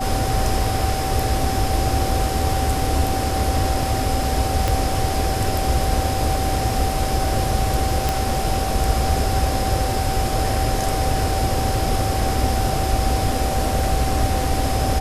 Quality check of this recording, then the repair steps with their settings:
whine 770 Hz -25 dBFS
4.68 s: pop
8.09 s: pop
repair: de-click; band-stop 770 Hz, Q 30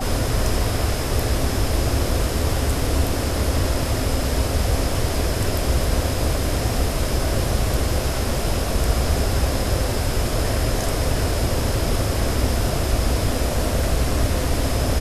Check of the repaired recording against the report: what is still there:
4.68 s: pop

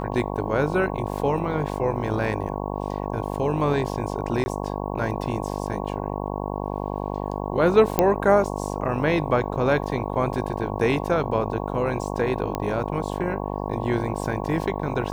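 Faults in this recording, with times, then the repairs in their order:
buzz 50 Hz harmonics 22 -29 dBFS
4.44–4.46 s: dropout 20 ms
7.99 s: pop -4 dBFS
12.55 s: pop -13 dBFS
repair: de-click; de-hum 50 Hz, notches 22; interpolate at 4.44 s, 20 ms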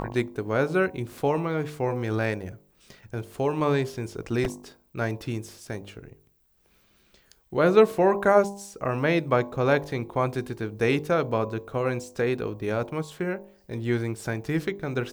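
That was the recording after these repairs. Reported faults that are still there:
nothing left

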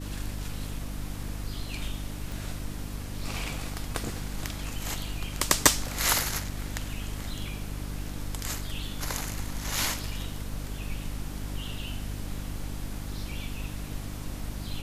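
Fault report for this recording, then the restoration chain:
hum 50 Hz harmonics 6 -37 dBFS
2.32 s: pop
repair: de-click; de-hum 50 Hz, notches 6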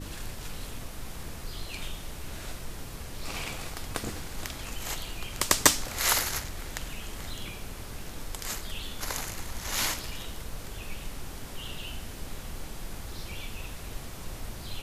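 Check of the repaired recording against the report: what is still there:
nothing left

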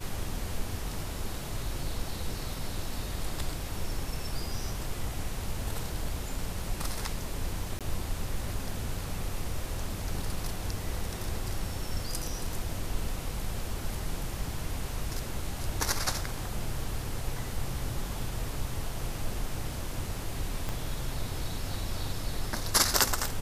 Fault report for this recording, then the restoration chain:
7.79–7.81 s: dropout 17 ms
20.69 s: pop -19 dBFS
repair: de-click; interpolate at 7.79 s, 17 ms

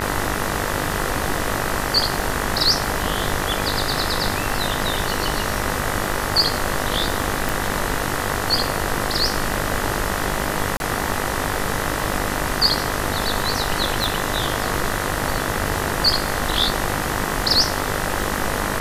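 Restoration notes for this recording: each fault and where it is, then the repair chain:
buzz 50 Hz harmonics 40 -27 dBFS
crackle 22 per s -26 dBFS
7.49 s: pop
10.77–10.80 s: dropout 31 ms
14.04 s: pop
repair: de-click; de-hum 50 Hz, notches 40; interpolate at 10.77 s, 31 ms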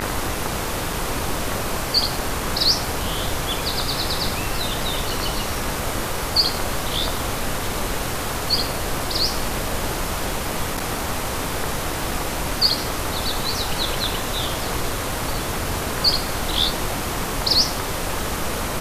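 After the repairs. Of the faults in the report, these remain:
nothing left

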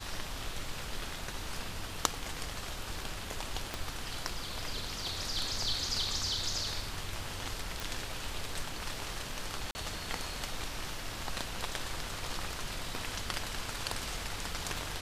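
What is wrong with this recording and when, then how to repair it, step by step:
3.74 s: pop -19 dBFS
7.80 s: pop
9.71–9.75 s: dropout 40 ms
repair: de-click; interpolate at 9.71 s, 40 ms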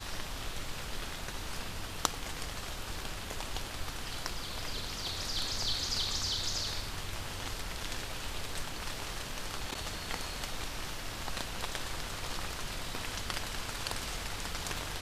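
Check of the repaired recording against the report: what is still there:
3.74 s: pop

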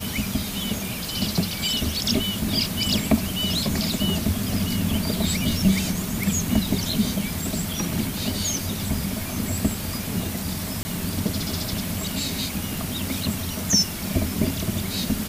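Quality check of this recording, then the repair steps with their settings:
10.83–10.85 s: dropout 20 ms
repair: interpolate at 10.83 s, 20 ms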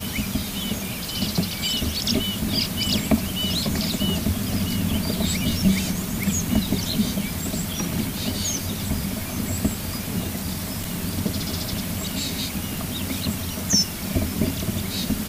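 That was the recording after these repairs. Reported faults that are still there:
nothing left

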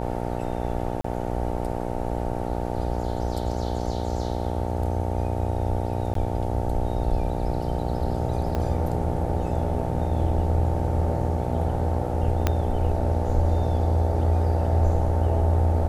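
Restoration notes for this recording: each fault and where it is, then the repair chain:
buzz 60 Hz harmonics 15 -29 dBFS
1.01–1.04 s: dropout 34 ms
6.14–6.15 s: dropout 13 ms
8.55 s: pop -15 dBFS
12.47 s: pop -7 dBFS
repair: de-click; de-hum 60 Hz, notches 15; interpolate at 1.01 s, 34 ms; interpolate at 6.14 s, 13 ms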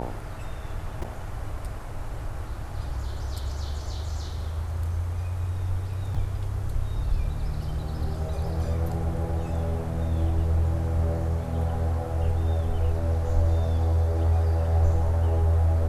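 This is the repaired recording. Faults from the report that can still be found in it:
8.55 s: pop
12.47 s: pop

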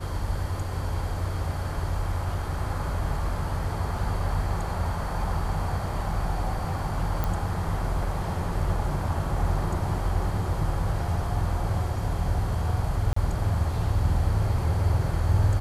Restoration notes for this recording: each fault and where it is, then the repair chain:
7.24 s: pop -14 dBFS
13.13–13.16 s: dropout 34 ms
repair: de-click; interpolate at 13.13 s, 34 ms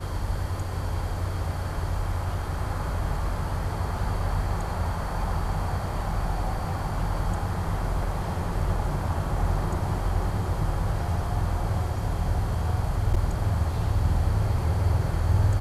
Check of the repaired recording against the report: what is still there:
nothing left

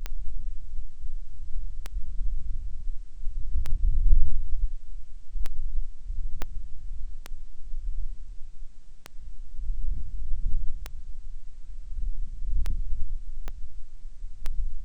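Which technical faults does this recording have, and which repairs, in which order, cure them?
tick 33 1/3 rpm -16 dBFS
6.42 s: pop -14 dBFS
13.48 s: pop -20 dBFS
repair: de-click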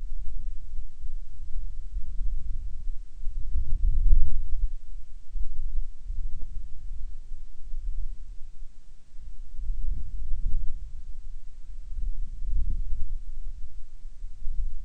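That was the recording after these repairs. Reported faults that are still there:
6.42 s: pop
13.48 s: pop

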